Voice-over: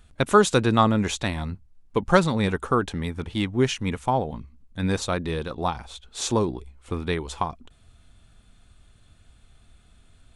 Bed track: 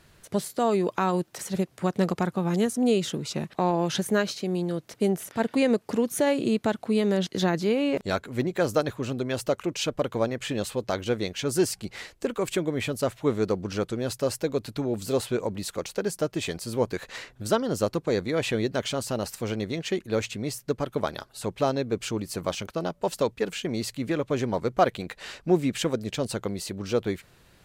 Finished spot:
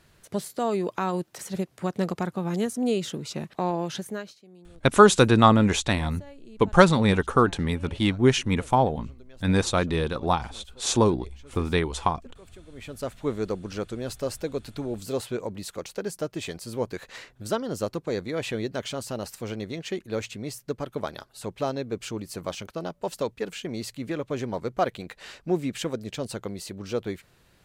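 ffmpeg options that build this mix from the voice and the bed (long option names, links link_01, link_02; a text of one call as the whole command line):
ffmpeg -i stem1.wav -i stem2.wav -filter_complex "[0:a]adelay=4650,volume=2.5dB[link_01];[1:a]volume=17.5dB,afade=type=out:start_time=3.72:duration=0.68:silence=0.0891251,afade=type=in:start_time=12.68:duration=0.51:silence=0.1[link_02];[link_01][link_02]amix=inputs=2:normalize=0" out.wav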